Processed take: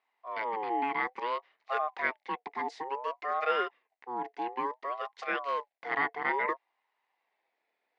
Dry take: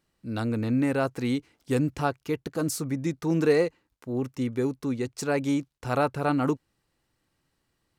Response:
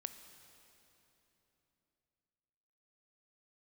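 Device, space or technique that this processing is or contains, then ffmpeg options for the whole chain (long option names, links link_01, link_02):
voice changer toy: -af "aeval=exprs='val(0)*sin(2*PI*750*n/s+750*0.25/0.58*sin(2*PI*0.58*n/s))':channel_layout=same,highpass=480,equalizer=frequency=570:width_type=q:width=4:gain=-7,equalizer=frequency=1300:width_type=q:width=4:gain=-7,equalizer=frequency=2000:width_type=q:width=4:gain=8,equalizer=frequency=3300:width_type=q:width=4:gain=-5,lowpass=frequency=3700:width=0.5412,lowpass=frequency=3700:width=1.3066"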